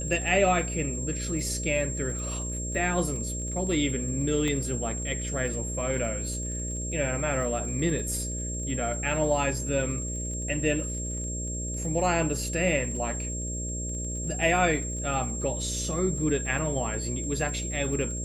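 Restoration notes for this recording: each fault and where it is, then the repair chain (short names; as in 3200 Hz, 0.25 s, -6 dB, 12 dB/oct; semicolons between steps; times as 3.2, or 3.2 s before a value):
buzz 60 Hz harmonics 10 -34 dBFS
crackle 27/s -37 dBFS
tone 7500 Hz -34 dBFS
4.48 pop -18 dBFS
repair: de-click; notch 7500 Hz, Q 30; de-hum 60 Hz, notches 10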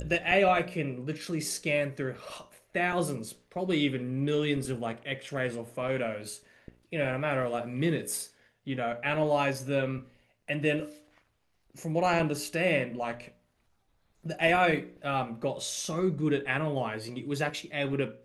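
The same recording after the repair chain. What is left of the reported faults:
4.48 pop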